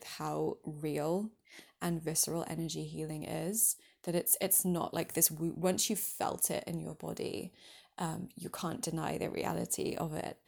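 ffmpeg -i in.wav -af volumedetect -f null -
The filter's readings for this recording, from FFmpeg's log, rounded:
mean_volume: -35.7 dB
max_volume: -11.1 dB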